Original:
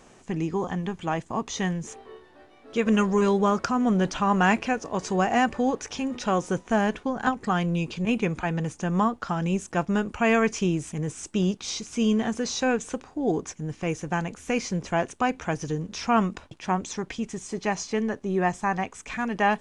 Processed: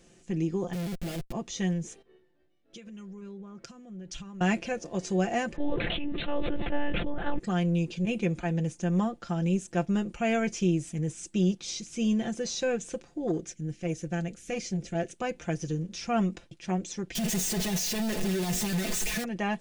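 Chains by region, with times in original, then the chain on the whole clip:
0:00.73–0:01.32: mu-law and A-law mismatch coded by A + comparator with hysteresis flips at −39 dBFS
0:02.02–0:04.41: downward compressor 16 to 1, threshold −35 dBFS + multiband upward and downward expander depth 100%
0:05.56–0:07.39: one-pitch LPC vocoder at 8 kHz 290 Hz + level that may fall only so fast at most 21 dB per second
0:13.27–0:15.15: parametric band 1,000 Hz −13.5 dB 0.4 octaves + saturating transformer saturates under 390 Hz
0:17.15–0:19.24: sign of each sample alone + comb filter 4.7 ms, depth 67%
whole clip: parametric band 1,000 Hz −14 dB 1.2 octaves; comb filter 5.8 ms, depth 62%; dynamic equaliser 670 Hz, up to +5 dB, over −40 dBFS, Q 0.87; level −4.5 dB

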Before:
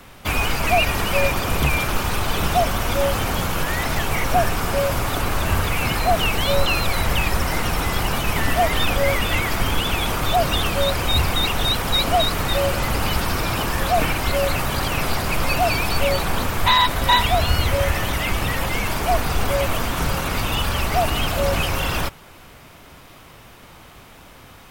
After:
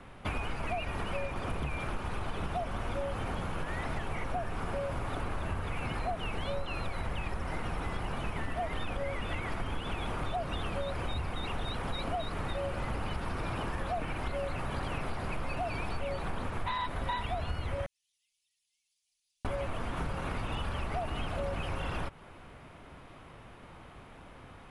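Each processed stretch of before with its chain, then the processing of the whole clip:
0:17.86–0:19.45: inverse Chebyshev high-pass filter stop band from 1,400 Hz, stop band 80 dB + high-frequency loss of the air 240 metres
whole clip: Chebyshev low-pass filter 11,000 Hz, order 8; parametric band 6,700 Hz −15 dB 2.1 octaves; downward compressor, threshold −27 dBFS; level −4 dB

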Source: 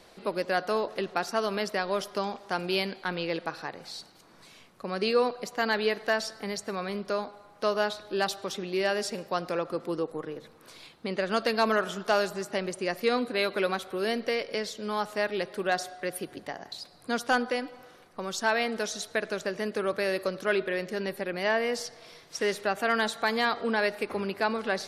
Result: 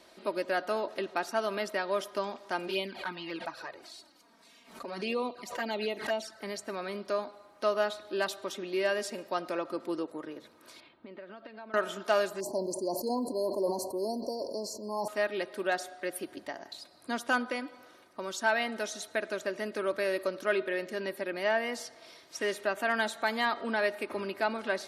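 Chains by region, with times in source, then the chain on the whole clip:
0:02.67–0:06.42: flanger swept by the level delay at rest 4.9 ms, full sweep at −23 dBFS + background raised ahead of every attack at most 94 dB per second
0:10.80–0:11.74: downward compressor 8 to 1, threshold −38 dBFS + high-frequency loss of the air 390 metres
0:12.40–0:15.08: floating-point word with a short mantissa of 6 bits + linear-phase brick-wall band-stop 1,100–4,100 Hz + level that may fall only so fast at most 47 dB per second
whole clip: high-pass filter 160 Hz 6 dB per octave; dynamic equaliser 4,900 Hz, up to −5 dB, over −48 dBFS, Q 1.9; comb filter 3.2 ms, depth 49%; level −3 dB

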